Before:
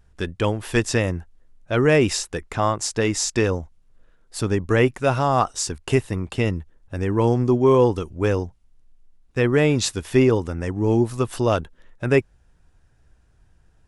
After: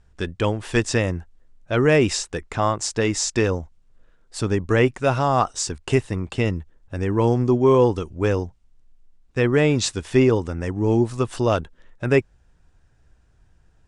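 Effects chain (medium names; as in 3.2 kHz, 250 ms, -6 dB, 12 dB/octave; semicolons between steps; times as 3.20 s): steep low-pass 9.2 kHz 36 dB/octave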